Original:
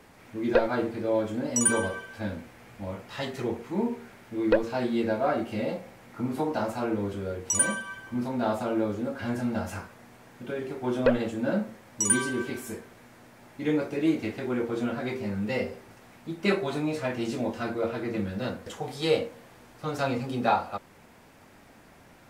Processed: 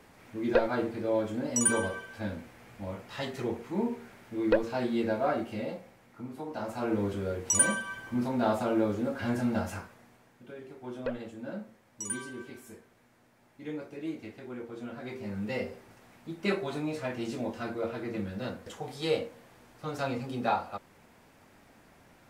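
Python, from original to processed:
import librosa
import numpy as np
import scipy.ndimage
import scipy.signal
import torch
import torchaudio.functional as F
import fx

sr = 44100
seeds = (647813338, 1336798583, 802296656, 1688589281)

y = fx.gain(x, sr, db=fx.line((5.3, -2.5), (6.39, -12.0), (6.96, 0.0), (9.59, 0.0), (10.42, -12.0), (14.8, -12.0), (15.39, -4.5)))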